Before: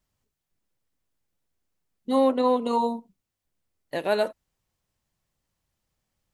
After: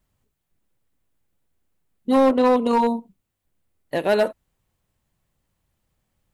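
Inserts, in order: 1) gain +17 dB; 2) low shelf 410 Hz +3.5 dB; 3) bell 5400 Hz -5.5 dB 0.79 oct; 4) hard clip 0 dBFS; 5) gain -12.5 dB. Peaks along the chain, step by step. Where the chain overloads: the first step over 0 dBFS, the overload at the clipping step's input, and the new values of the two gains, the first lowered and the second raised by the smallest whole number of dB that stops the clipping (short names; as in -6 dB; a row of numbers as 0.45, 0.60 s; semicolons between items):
+4.5, +5.5, +5.5, 0.0, -12.5 dBFS; step 1, 5.5 dB; step 1 +11 dB, step 5 -6.5 dB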